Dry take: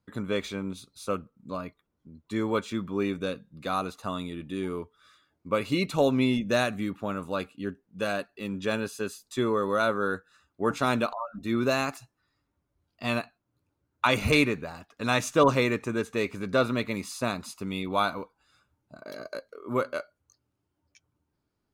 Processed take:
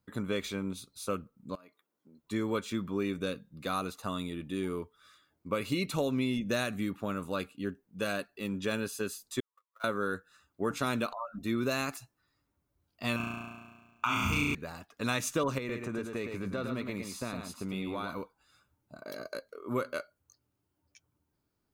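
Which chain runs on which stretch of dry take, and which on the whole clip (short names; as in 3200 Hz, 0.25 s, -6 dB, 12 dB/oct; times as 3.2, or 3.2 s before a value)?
1.55–2.23 HPF 310 Hz + compressor, threshold -51 dBFS
9.4–9.84 zero-crossing step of -31.5 dBFS + ladder high-pass 830 Hz, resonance 40% + gate -28 dBFS, range -60 dB
13.16–14.55 fixed phaser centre 2700 Hz, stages 8 + flutter echo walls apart 5.9 m, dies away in 1.4 s
15.58–18.1 high shelf 4000 Hz -8.5 dB + compressor 4:1, threshold -30 dBFS + echo 0.11 s -6 dB
whole clip: dynamic EQ 780 Hz, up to -5 dB, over -41 dBFS, Q 1.6; compressor 6:1, threshold -25 dBFS; high shelf 11000 Hz +10 dB; gain -1.5 dB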